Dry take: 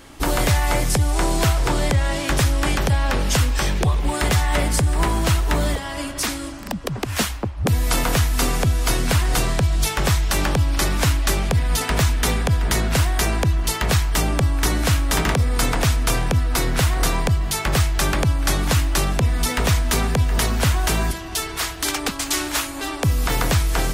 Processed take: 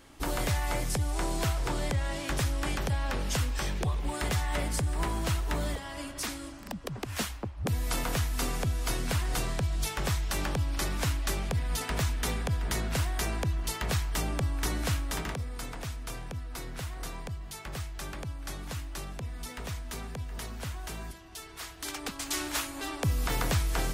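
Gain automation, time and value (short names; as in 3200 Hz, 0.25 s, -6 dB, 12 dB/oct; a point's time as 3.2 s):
14.91 s -11 dB
15.63 s -19 dB
21.39 s -19 dB
22.46 s -9 dB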